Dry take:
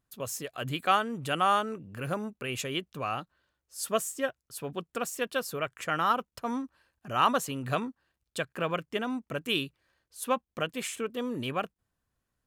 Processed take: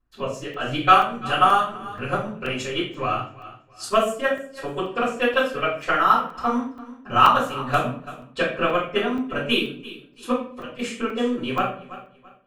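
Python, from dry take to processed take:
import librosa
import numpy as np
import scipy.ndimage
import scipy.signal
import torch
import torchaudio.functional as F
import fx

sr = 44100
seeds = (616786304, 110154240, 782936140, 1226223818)

p1 = fx.env_lowpass(x, sr, base_hz=2700.0, full_db=-25.0)
p2 = fx.level_steps(p1, sr, step_db=22, at=(10.3, 10.78), fade=0.02)
p3 = p2 + fx.echo_feedback(p2, sr, ms=335, feedback_pct=27, wet_db=-14.5, dry=0)
p4 = fx.transient(p3, sr, attack_db=8, sustain_db=-10)
p5 = fx.peak_eq(p4, sr, hz=160.0, db=-4.5, octaves=0.36)
p6 = fx.room_shoebox(p5, sr, seeds[0], volume_m3=54.0, walls='mixed', distance_m=3.4)
p7 = fx.buffer_crackle(p6, sr, first_s=0.54, period_s=0.48, block=128, kind='zero')
y = p7 * librosa.db_to_amplitude(-10.0)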